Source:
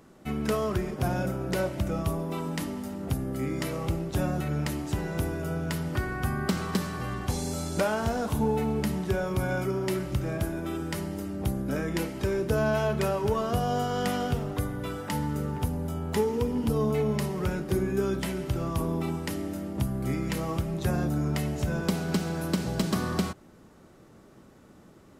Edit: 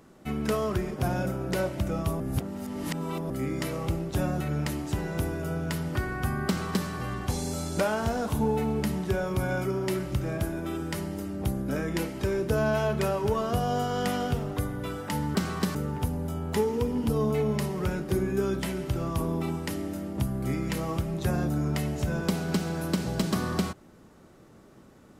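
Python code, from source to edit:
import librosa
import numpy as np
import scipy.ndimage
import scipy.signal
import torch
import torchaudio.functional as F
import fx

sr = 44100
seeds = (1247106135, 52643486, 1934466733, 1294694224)

y = fx.edit(x, sr, fx.reverse_span(start_s=2.2, length_s=1.1),
    fx.duplicate(start_s=6.47, length_s=0.4, to_s=15.35), tone=tone)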